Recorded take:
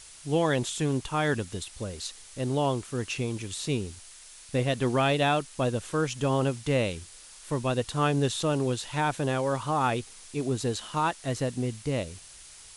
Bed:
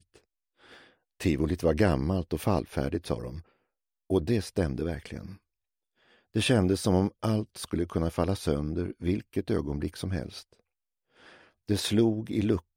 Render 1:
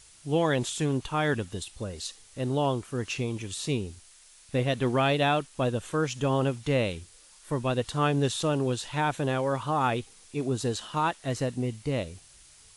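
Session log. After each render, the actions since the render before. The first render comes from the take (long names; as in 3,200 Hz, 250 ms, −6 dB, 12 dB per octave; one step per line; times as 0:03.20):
noise reduction from a noise print 6 dB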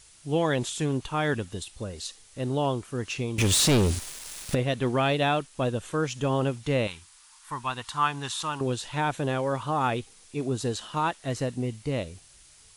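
0:03.38–0:04.55: leveller curve on the samples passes 5
0:06.87–0:08.61: low shelf with overshoot 720 Hz −9.5 dB, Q 3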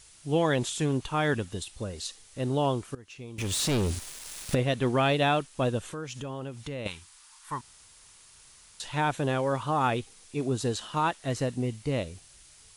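0:02.95–0:04.59: fade in, from −20.5 dB
0:05.85–0:06.86: downward compressor 3 to 1, threshold −36 dBFS
0:07.61–0:08.80: fill with room tone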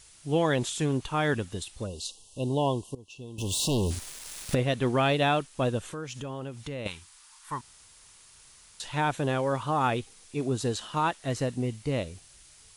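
0:01.86–0:03.91: time-frequency box erased 1,100–2,600 Hz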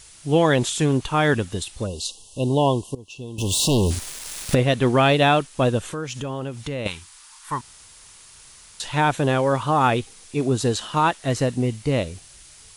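level +7.5 dB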